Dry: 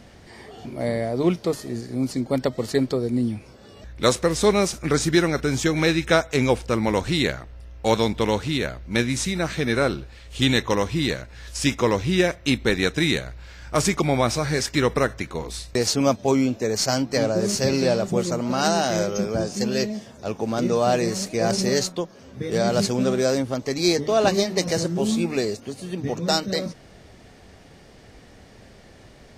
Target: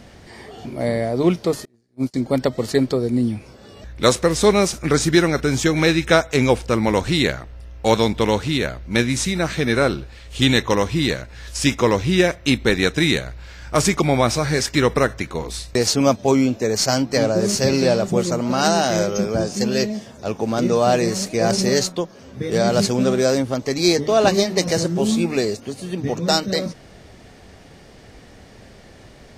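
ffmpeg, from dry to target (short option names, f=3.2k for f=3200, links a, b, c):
-filter_complex "[0:a]asettb=1/sr,asplit=3[a][b][c];[a]atrim=end=1.654[d];[b]atrim=start=1.65:end=2.14,asetpts=PTS-STARTPTS,afade=t=in:d=0.004:c=qsin,afade=t=out:st=0.486:d=0.004:c=qsin,agate=range=-35dB:threshold=-22dB:ratio=16:detection=peak[e];[c]atrim=start=2.136[f];[d][e]acrossfade=d=0.004:c1=hsin:c2=qsin[g];[g][f]acrossfade=d=0.004:c1=qsin:c2=hsin,volume=3.5dB"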